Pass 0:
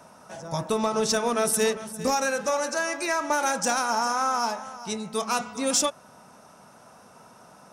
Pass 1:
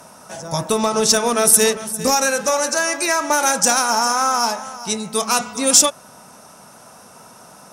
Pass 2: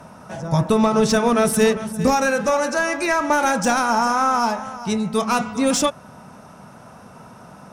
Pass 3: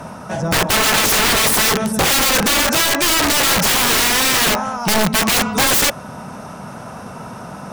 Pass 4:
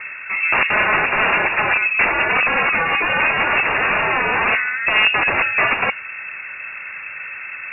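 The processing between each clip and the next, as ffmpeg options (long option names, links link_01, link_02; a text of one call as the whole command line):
ffmpeg -i in.wav -af "aemphasis=mode=production:type=cd,volume=6.5dB" out.wav
ffmpeg -i in.wav -af "acontrast=25,bass=frequency=250:gain=9,treble=frequency=4000:gain=-13,volume=-4.5dB" out.wav
ffmpeg -i in.wav -af "areverse,acompressor=mode=upward:threshold=-35dB:ratio=2.5,areverse,aeval=exprs='(mod(8.41*val(0)+1,2)-1)/8.41':channel_layout=same,volume=8.5dB" out.wav
ffmpeg -i in.wav -af "lowpass=frequency=2400:width_type=q:width=0.5098,lowpass=frequency=2400:width_type=q:width=0.6013,lowpass=frequency=2400:width_type=q:width=0.9,lowpass=frequency=2400:width_type=q:width=2.563,afreqshift=-2800,volume=1dB" out.wav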